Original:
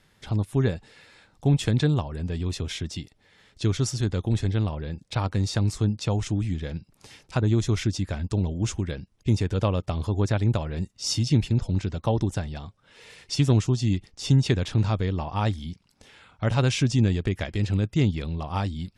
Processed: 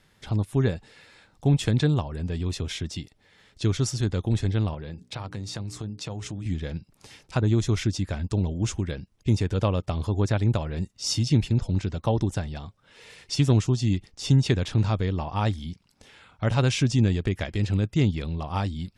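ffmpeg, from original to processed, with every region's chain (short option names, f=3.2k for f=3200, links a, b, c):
-filter_complex "[0:a]asettb=1/sr,asplit=3[a][b][c];[a]atrim=end=4.744[d];[b]atrim=start=4.74:end=6.46,asetpts=PTS-STARTPTS,afade=t=in:d=0.004:c=qsin,afade=t=out:st=1.716:d=0.004:c=qsin,highpass=79,bandreject=f=60:t=h:w=6,bandreject=f=120:t=h:w=6,bandreject=f=180:t=h:w=6,bandreject=f=240:t=h:w=6,bandreject=f=300:t=h:w=6,bandreject=f=360:t=h:w=6,bandreject=f=420:t=h:w=6,acompressor=threshold=-31dB:ratio=4:attack=3.2:release=140:knee=1:detection=peak[e];[c]atrim=start=6.456[f];[d][e]acrossfade=d=0.004:c1=hsin:c2=qsin[g];[g][f]acrossfade=d=0.004:c1=qsin:c2=hsin"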